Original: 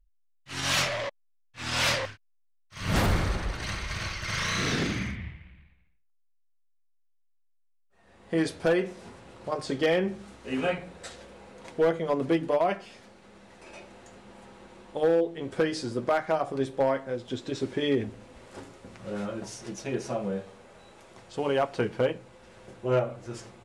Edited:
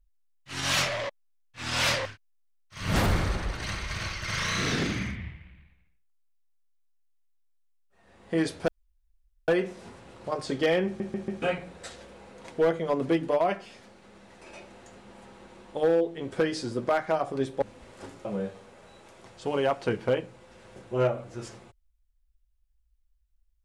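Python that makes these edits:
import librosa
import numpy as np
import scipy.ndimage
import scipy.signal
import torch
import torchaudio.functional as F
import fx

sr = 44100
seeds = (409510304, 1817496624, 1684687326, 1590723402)

y = fx.edit(x, sr, fx.insert_room_tone(at_s=8.68, length_s=0.8),
    fx.stutter_over(start_s=10.06, slice_s=0.14, count=4),
    fx.cut(start_s=16.82, length_s=1.34),
    fx.cut(start_s=18.79, length_s=1.38), tone=tone)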